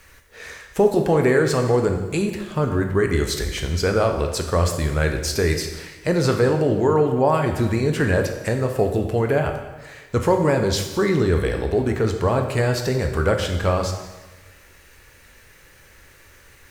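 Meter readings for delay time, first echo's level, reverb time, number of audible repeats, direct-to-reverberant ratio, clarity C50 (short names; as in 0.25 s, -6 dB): none, none, 1.2 s, none, 4.0 dB, 7.0 dB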